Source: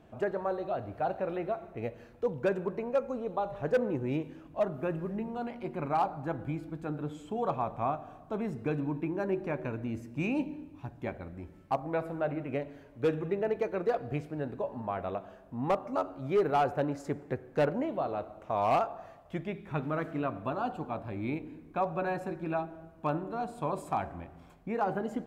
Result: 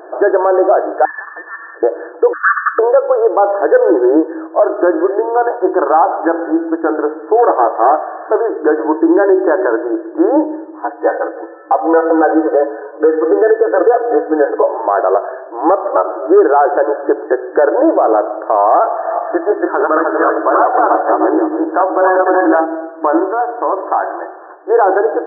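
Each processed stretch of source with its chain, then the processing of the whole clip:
1.05–1.83 inverted band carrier 2500 Hz + compressor 3:1, threshold -44 dBFS
2.33–2.79 half-waves squared off + brick-wall FIR high-pass 1100 Hz
7.37–8.5 delta modulation 32 kbps, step -45.5 dBFS + HPF 320 Hz 6 dB/oct + air absorption 390 m
10.82–14.63 comb 4 ms, depth 97% + three bands offset in time mids, highs, lows 40/270 ms, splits 200/2000 Hz
18.89–22.65 regenerating reverse delay 0.153 s, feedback 47%, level -0.5 dB + low shelf 250 Hz -10 dB
23.24–24.7 compressor 3:1, threshold -36 dBFS + low shelf 480 Hz -6 dB
whole clip: FFT band-pass 310–1800 Hz; compressor 4:1, threshold -30 dBFS; maximiser +28 dB; gain -1 dB

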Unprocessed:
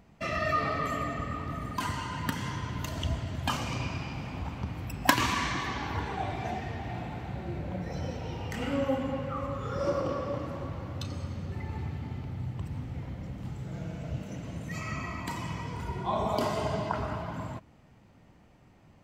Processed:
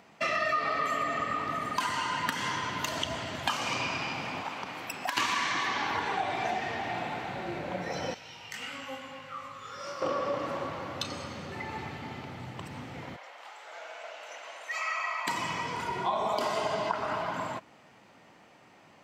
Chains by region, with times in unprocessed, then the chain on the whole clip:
4.41–5.17 HPF 340 Hz 6 dB/oct + compressor, threshold -35 dBFS
8.14–10.02 passive tone stack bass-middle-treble 5-5-5 + doubler 19 ms -4 dB
13.16–15.27 HPF 640 Hz 24 dB/oct + high shelf 5400 Hz -8.5 dB
whole clip: weighting filter A; compressor 4:1, threshold -35 dBFS; gain +8 dB

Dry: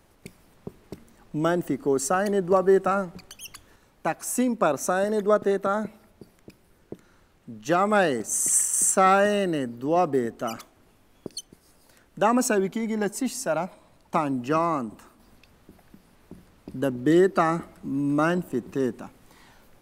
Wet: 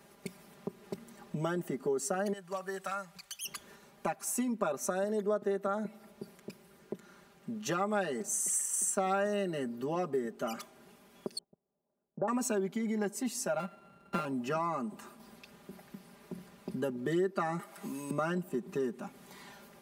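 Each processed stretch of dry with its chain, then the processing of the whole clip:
2.33–3.45 passive tone stack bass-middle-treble 10-0-10 + hard clip -26.5 dBFS
11.38–12.28 gate -47 dBFS, range -20 dB + ladder low-pass 970 Hz, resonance 25%
13.59–14.25 sample sorter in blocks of 32 samples + LPF 1500 Hz 6 dB/oct
17.59–18.11 HPF 950 Hz 6 dB/oct + high shelf 4900 Hz +9 dB + three-band squash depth 70%
whole clip: HPF 120 Hz 12 dB/oct; comb 5 ms, depth 87%; compressor 2.5:1, threshold -36 dBFS

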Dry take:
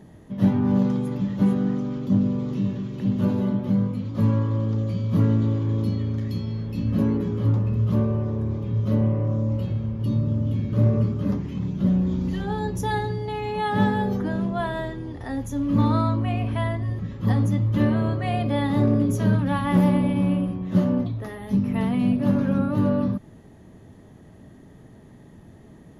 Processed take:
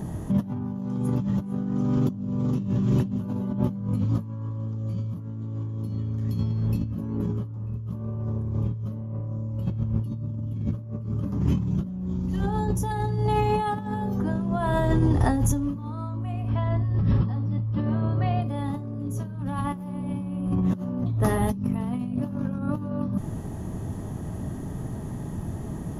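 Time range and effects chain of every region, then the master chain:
16.49–18.42 brick-wall FIR low-pass 5700 Hz + compressor 2:1, threshold -29 dBFS
whole clip: graphic EQ 250/500/2000/4000 Hz -4/-7/-10/-9 dB; negative-ratio compressor -36 dBFS, ratio -1; gain +8.5 dB

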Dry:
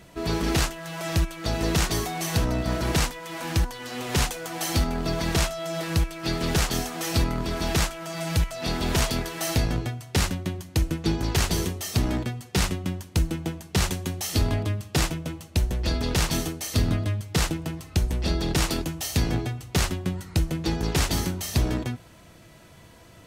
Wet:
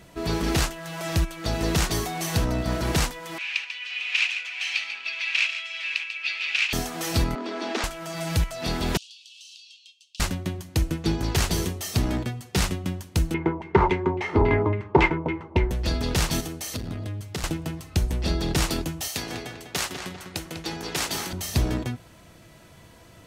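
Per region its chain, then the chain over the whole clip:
3.38–6.73 resonant high-pass 2500 Hz, resonance Q 7.9 + air absorption 150 m + echo 0.142 s -9.5 dB
7.35–7.84 steep high-pass 220 Hz 96 dB/oct + air absorption 130 m
8.97–10.2 steep high-pass 2700 Hz 96 dB/oct + air absorption 120 m + compressor 4:1, threshold -44 dBFS
13.34–15.71 LFO low-pass saw down 3.6 Hz 800–2700 Hz + small resonant body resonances 390/920/2100 Hz, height 15 dB, ringing for 35 ms
16.4–17.44 HPF 42 Hz + compressor 3:1, threshold -28 dBFS + core saturation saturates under 320 Hz
19.08–21.33 HPF 630 Hz 6 dB/oct + darkening echo 0.198 s, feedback 44%, low-pass 3900 Hz, level -6.5 dB
whole clip: dry

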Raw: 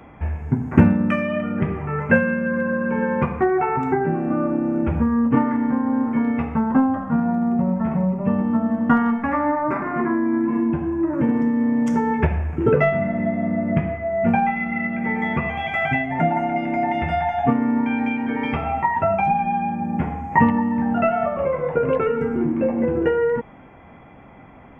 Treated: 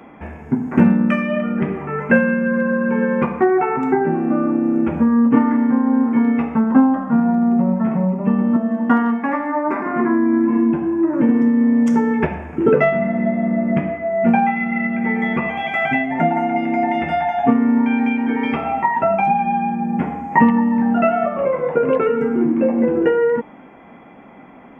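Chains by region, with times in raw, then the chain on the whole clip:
8.56–9.86 HPF 240 Hz + notch 1300 Hz, Q 7.7 + de-hum 316.9 Hz, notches 39
whole clip: resonant low shelf 150 Hz -11.5 dB, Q 1.5; de-hum 295.7 Hz, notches 5; maximiser +3.5 dB; gain -1 dB

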